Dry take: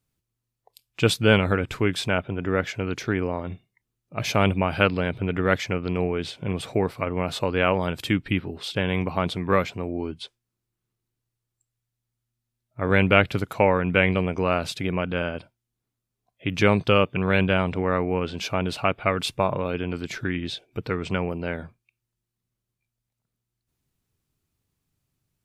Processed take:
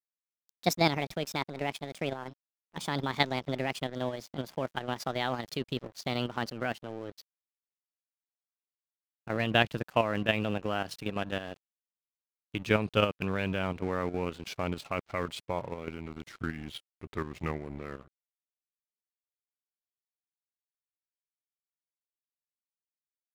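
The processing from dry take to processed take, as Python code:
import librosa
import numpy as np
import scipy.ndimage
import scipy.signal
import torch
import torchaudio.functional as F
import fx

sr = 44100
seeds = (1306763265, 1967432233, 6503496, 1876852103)

y = fx.speed_glide(x, sr, from_pct=157, to_pct=61)
y = np.sign(y) * np.maximum(np.abs(y) - 10.0 ** (-38.0 / 20.0), 0.0)
y = fx.level_steps(y, sr, step_db=9)
y = y * 10.0 ** (-4.0 / 20.0)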